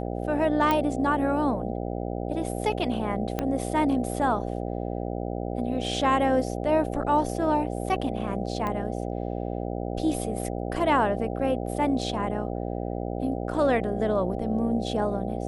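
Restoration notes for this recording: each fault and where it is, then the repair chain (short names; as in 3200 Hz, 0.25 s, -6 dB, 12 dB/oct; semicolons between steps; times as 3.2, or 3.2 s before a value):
buzz 60 Hz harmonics 13 -31 dBFS
0.71 pop -11 dBFS
3.39 pop -13 dBFS
8.67 pop -18 dBFS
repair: de-click; de-hum 60 Hz, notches 13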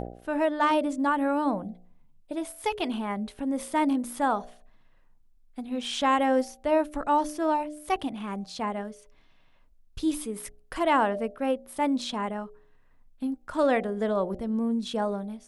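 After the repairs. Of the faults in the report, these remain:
3.39 pop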